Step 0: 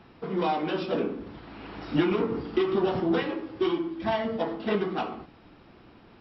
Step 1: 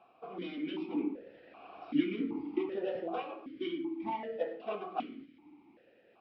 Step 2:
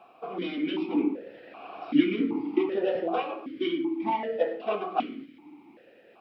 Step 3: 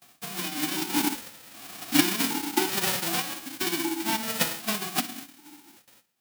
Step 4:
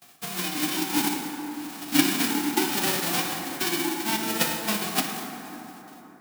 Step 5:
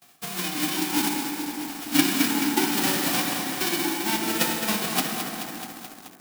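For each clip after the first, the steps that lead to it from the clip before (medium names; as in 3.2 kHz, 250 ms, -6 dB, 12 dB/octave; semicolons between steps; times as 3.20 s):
stepped vowel filter 2.6 Hz; trim +2.5 dB
high-pass 150 Hz 6 dB/octave; trim +9 dB
formants flattened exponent 0.1; gate with hold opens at -43 dBFS
in parallel at -2 dB: gain riding within 4 dB; on the sum: plate-style reverb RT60 3.9 s, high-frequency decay 0.4×, DRR 3 dB; trim -4.5 dB
in parallel at -8.5 dB: bit crusher 6-bit; on the sum: bit-crushed delay 215 ms, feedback 80%, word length 6-bit, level -7.5 dB; trim -2.5 dB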